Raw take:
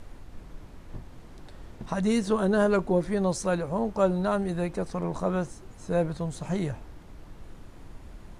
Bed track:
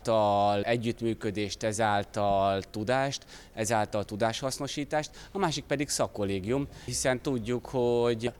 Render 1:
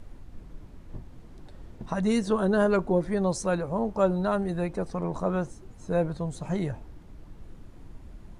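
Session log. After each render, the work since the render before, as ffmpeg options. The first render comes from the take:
ffmpeg -i in.wav -af "afftdn=noise_reduction=6:noise_floor=-47" out.wav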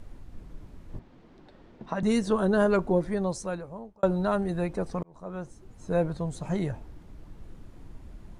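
ffmpeg -i in.wav -filter_complex "[0:a]asettb=1/sr,asplit=3[link_01][link_02][link_03];[link_01]atrim=end=0.994[link_04];[link_02]atrim=start=0.99:end=2.03,asetpts=PTS-STARTPTS,afade=type=in:duration=0.004:curve=qsin,afade=type=out:start_time=1.036:duration=0.004:curve=qsin,acrossover=split=170 5200:gain=0.2 1 0.112[link_05][link_06][link_07];[link_05][link_06][link_07]amix=inputs=3:normalize=0[link_08];[link_03]atrim=start=2.026[link_09];[link_04][link_08]acrossfade=duration=0.004:curve1=hsin:curve2=qsin[link_10];[link_10][link_09]acrossfade=duration=0.004:curve1=qsin:curve2=hsin,asplit=3[link_11][link_12][link_13];[link_11]atrim=end=4.03,asetpts=PTS-STARTPTS,afade=type=out:start_time=2.95:duration=1.08[link_14];[link_12]atrim=start=4.03:end=5.03,asetpts=PTS-STARTPTS,afade=type=in:duration=0.004:curve=hsin,afade=type=out:start_time=0.996:duration=0.004:curve=hsin[link_15];[link_13]atrim=start=5.03,asetpts=PTS-STARTPTS,afade=type=in:duration=0.92[link_16];[link_14][link_15][link_16]concat=n=3:v=0:a=1" out.wav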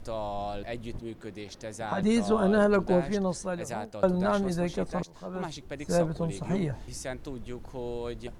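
ffmpeg -i in.wav -i bed.wav -filter_complex "[1:a]volume=-9.5dB[link_01];[0:a][link_01]amix=inputs=2:normalize=0" out.wav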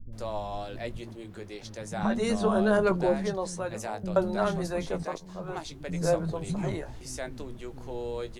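ffmpeg -i in.wav -filter_complex "[0:a]asplit=2[link_01][link_02];[link_02]adelay=19,volume=-10.5dB[link_03];[link_01][link_03]amix=inputs=2:normalize=0,acrossover=split=250[link_04][link_05];[link_05]adelay=130[link_06];[link_04][link_06]amix=inputs=2:normalize=0" out.wav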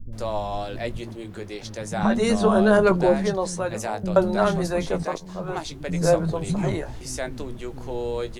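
ffmpeg -i in.wav -af "volume=6.5dB" out.wav

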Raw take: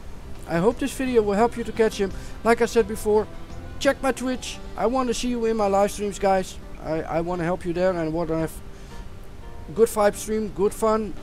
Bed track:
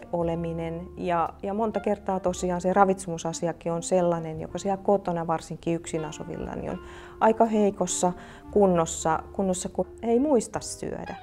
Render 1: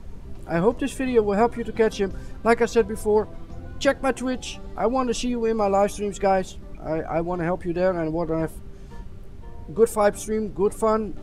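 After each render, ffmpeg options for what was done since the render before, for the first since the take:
ffmpeg -i in.wav -af "afftdn=noise_reduction=9:noise_floor=-39" out.wav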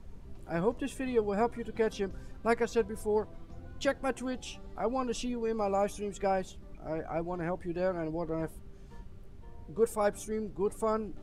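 ffmpeg -i in.wav -af "volume=-9.5dB" out.wav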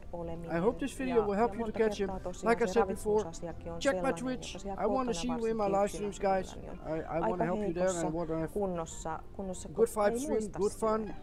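ffmpeg -i in.wav -i bed.wav -filter_complex "[1:a]volume=-13.5dB[link_01];[0:a][link_01]amix=inputs=2:normalize=0" out.wav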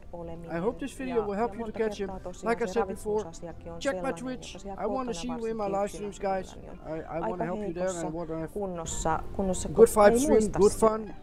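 ffmpeg -i in.wav -filter_complex "[0:a]asplit=3[link_01][link_02][link_03];[link_01]atrim=end=8.852[link_04];[link_02]atrim=start=8.848:end=10.882,asetpts=PTS-STARTPTS,volume=10dB[link_05];[link_03]atrim=start=10.878[link_06];[link_04][link_05]acrossfade=duration=0.004:curve1=hsin:curve2=hsin[link_07];[link_07][link_06]acrossfade=duration=0.004:curve1=hsin:curve2=hsin" out.wav

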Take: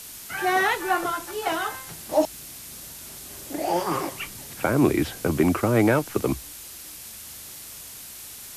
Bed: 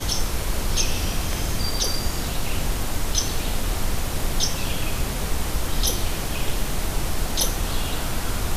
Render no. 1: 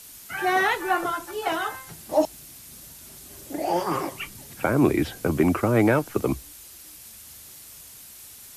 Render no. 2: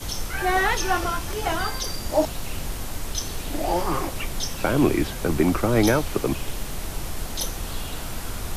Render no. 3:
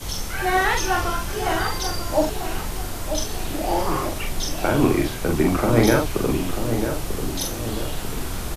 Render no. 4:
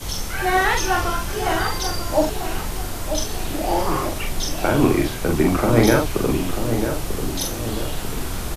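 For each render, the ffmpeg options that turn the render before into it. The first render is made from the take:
ffmpeg -i in.wav -af "afftdn=noise_reduction=6:noise_floor=-41" out.wav
ffmpeg -i in.wav -i bed.wav -filter_complex "[1:a]volume=-6dB[link_01];[0:a][link_01]amix=inputs=2:normalize=0" out.wav
ffmpeg -i in.wav -filter_complex "[0:a]asplit=2[link_01][link_02];[link_02]adelay=43,volume=-3.5dB[link_03];[link_01][link_03]amix=inputs=2:normalize=0,asplit=2[link_04][link_05];[link_05]adelay=942,lowpass=frequency=1100:poles=1,volume=-7dB,asplit=2[link_06][link_07];[link_07]adelay=942,lowpass=frequency=1100:poles=1,volume=0.51,asplit=2[link_08][link_09];[link_09]adelay=942,lowpass=frequency=1100:poles=1,volume=0.51,asplit=2[link_10][link_11];[link_11]adelay=942,lowpass=frequency=1100:poles=1,volume=0.51,asplit=2[link_12][link_13];[link_13]adelay=942,lowpass=frequency=1100:poles=1,volume=0.51,asplit=2[link_14][link_15];[link_15]adelay=942,lowpass=frequency=1100:poles=1,volume=0.51[link_16];[link_04][link_06][link_08][link_10][link_12][link_14][link_16]amix=inputs=7:normalize=0" out.wav
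ffmpeg -i in.wav -af "volume=1.5dB" out.wav

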